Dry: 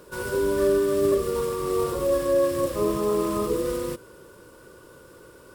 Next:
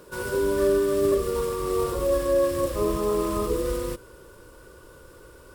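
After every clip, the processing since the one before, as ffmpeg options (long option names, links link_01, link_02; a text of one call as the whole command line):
ffmpeg -i in.wav -af "asubboost=boost=4.5:cutoff=76" out.wav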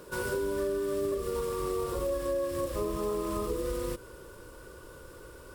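ffmpeg -i in.wav -af "acompressor=threshold=-29dB:ratio=5" out.wav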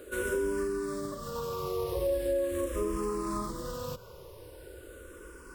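ffmpeg -i in.wav -filter_complex "[0:a]asplit=2[link_01][link_02];[link_02]afreqshift=-0.41[link_03];[link_01][link_03]amix=inputs=2:normalize=1,volume=2.5dB" out.wav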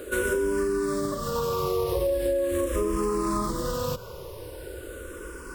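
ffmpeg -i in.wav -af "acompressor=threshold=-31dB:ratio=6,volume=9dB" out.wav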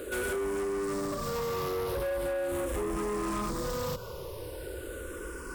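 ffmpeg -i in.wav -af "asoftclip=type=tanh:threshold=-29dB" out.wav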